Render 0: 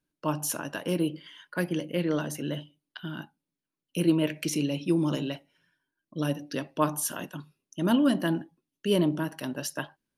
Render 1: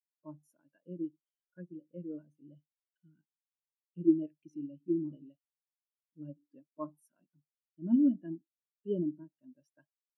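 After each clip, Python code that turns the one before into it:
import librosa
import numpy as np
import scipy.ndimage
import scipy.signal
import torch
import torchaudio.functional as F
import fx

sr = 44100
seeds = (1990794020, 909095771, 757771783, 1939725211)

y = fx.spectral_expand(x, sr, expansion=2.5)
y = y * librosa.db_to_amplitude(-4.0)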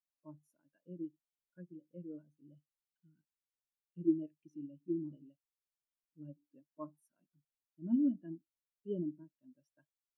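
y = fx.low_shelf(x, sr, hz=76.0, db=11.5)
y = y * librosa.db_to_amplitude(-6.0)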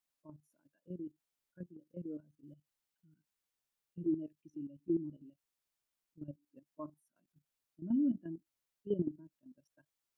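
y = fx.level_steps(x, sr, step_db=12)
y = y * librosa.db_to_amplitude(6.5)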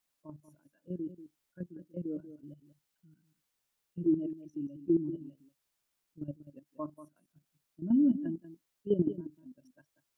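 y = x + 10.0 ** (-13.0 / 20.0) * np.pad(x, (int(188 * sr / 1000.0), 0))[:len(x)]
y = y * librosa.db_to_amplitude(6.0)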